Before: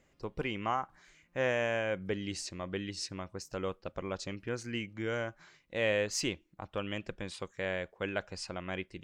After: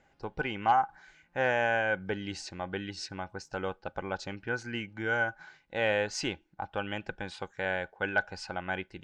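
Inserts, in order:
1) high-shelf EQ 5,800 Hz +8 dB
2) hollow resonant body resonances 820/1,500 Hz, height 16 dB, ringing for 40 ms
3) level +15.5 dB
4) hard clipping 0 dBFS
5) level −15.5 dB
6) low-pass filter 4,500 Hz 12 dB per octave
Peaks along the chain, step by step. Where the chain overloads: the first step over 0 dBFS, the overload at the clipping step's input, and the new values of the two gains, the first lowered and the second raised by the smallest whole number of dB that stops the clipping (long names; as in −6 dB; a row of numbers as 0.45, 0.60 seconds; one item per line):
−17.0, −12.0, +3.5, 0.0, −15.5, −15.0 dBFS
step 3, 3.5 dB
step 3 +11.5 dB, step 5 −11.5 dB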